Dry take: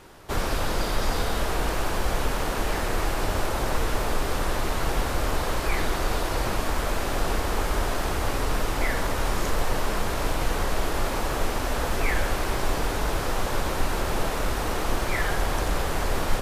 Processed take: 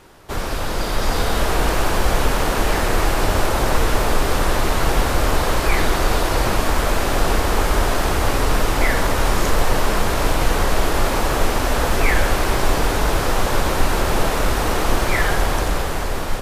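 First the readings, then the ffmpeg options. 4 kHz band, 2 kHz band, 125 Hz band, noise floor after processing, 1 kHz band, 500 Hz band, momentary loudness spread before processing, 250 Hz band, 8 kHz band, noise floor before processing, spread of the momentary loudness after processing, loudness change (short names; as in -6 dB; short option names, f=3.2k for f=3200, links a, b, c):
+7.5 dB, +7.5 dB, +7.5 dB, -22 dBFS, +7.5 dB, +7.5 dB, 1 LU, +7.5 dB, +7.5 dB, -28 dBFS, 2 LU, +7.5 dB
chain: -af "dynaudnorm=f=230:g=9:m=6.5dB,volume=1.5dB"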